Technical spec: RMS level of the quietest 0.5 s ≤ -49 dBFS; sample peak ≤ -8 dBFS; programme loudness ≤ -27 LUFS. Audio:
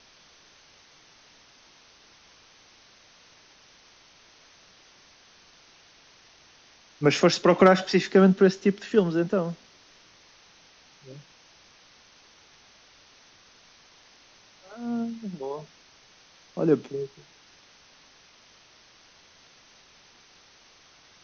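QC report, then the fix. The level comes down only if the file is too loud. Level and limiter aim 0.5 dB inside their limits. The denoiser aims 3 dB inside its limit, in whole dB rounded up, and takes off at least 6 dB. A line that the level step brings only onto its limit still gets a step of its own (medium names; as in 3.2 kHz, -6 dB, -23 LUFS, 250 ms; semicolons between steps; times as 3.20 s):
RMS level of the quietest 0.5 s -56 dBFS: pass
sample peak -5.0 dBFS: fail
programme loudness -23.5 LUFS: fail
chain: trim -4 dB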